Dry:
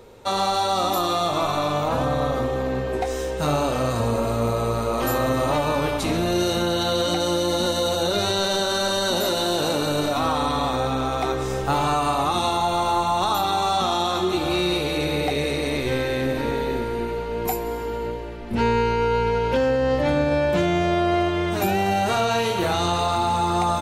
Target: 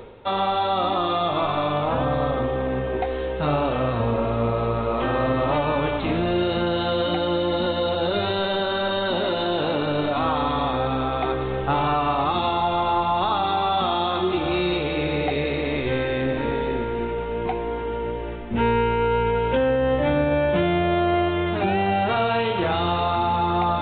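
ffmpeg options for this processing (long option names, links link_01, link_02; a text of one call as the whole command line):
ffmpeg -i in.wav -af "areverse,acompressor=mode=upward:threshold=-24dB:ratio=2.5,areverse,aresample=8000,aresample=44100" out.wav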